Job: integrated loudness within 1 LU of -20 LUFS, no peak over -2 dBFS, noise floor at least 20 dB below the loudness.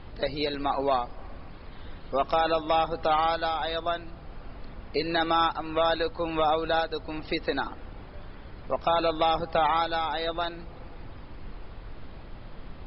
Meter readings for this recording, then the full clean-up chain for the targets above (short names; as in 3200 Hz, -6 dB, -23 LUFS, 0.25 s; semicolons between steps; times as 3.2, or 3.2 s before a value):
noise floor -44 dBFS; noise floor target -48 dBFS; loudness -27.5 LUFS; peak -13.0 dBFS; loudness target -20.0 LUFS
-> noise print and reduce 6 dB; gain +7.5 dB